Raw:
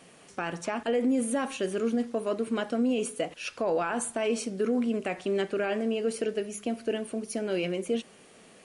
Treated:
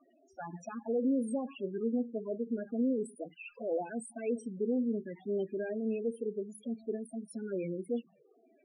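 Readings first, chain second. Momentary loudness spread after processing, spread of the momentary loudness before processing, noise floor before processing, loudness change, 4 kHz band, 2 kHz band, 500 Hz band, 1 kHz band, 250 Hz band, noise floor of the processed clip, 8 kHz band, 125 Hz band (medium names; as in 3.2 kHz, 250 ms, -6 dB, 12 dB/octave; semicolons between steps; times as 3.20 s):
10 LU, 6 LU, -55 dBFS, -6.0 dB, under -20 dB, -14.5 dB, -6.5 dB, -12.0 dB, -4.0 dB, -67 dBFS, -15.5 dB, -5.0 dB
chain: wow and flutter 46 cents; touch-sensitive flanger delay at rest 3.4 ms, full sweep at -23 dBFS; loudest bins only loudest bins 8; trim -3.5 dB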